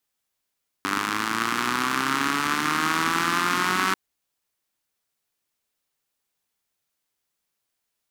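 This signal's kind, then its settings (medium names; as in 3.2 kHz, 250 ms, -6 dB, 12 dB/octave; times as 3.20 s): four-cylinder engine model, changing speed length 3.09 s, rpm 2900, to 5700, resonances 280/1200 Hz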